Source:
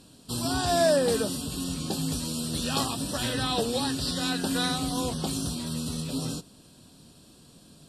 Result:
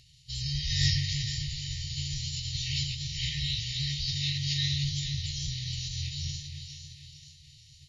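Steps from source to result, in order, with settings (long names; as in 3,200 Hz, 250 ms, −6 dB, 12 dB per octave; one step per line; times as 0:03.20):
echo with a time of its own for lows and highs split 940 Hz, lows 277 ms, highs 463 ms, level −8 dB
phase-vocoder pitch shift with formants kept −11 semitones
brick-wall band-stop 160–1,800 Hz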